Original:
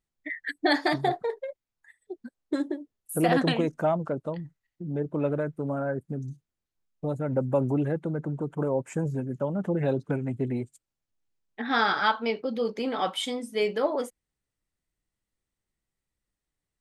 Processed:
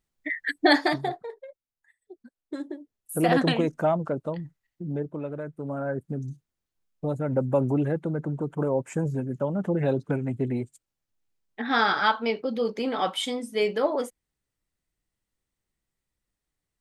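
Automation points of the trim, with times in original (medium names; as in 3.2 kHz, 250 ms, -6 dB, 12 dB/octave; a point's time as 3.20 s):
0.74 s +4.5 dB
1.25 s -8 dB
2.41 s -8 dB
3.32 s +1.5 dB
4.91 s +1.5 dB
5.27 s -7.5 dB
6.02 s +1.5 dB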